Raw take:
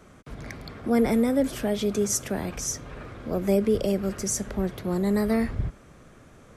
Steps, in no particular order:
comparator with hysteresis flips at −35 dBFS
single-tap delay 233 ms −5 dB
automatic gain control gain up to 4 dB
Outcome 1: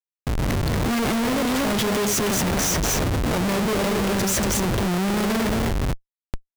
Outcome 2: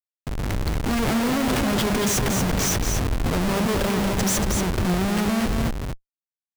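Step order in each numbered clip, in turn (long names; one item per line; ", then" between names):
automatic gain control, then single-tap delay, then comparator with hysteresis
comparator with hysteresis, then automatic gain control, then single-tap delay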